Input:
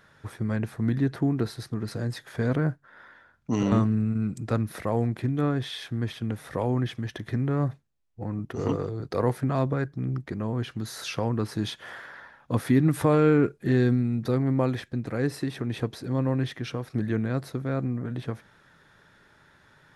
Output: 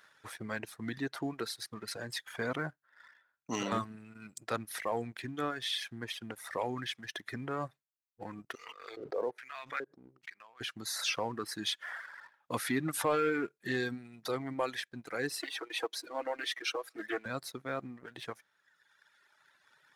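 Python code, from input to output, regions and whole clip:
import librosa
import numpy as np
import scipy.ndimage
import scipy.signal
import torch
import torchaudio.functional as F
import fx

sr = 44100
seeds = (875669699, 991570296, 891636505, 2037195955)

y = fx.chain(x, sr, fx.filter_lfo_bandpass(shape='square', hz=1.2, low_hz=460.0, high_hz=2300.0, q=2.0),
    fx.pre_swell(db_per_s=51.0), at=(8.55, 10.61))
y = fx.chain(y, sr, fx.highpass(hz=320.0, slope=24),
    fx.comb(ms=6.2, depth=0.82),
    fx.doppler_dist(depth_ms=0.15), at=(15.39, 17.26))
y = fx.highpass(y, sr, hz=1400.0, slope=6)
y = fx.dereverb_blind(y, sr, rt60_s=1.9)
y = fx.leveller(y, sr, passes=1)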